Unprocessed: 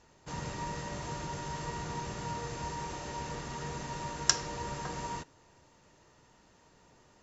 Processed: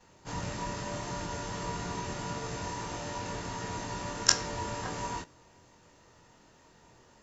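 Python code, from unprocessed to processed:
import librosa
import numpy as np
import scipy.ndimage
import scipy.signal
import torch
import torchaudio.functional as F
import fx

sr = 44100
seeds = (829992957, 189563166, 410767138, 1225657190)

y = fx.frame_reverse(x, sr, frame_ms=48.0)
y = y * librosa.db_to_amplitude(6.0)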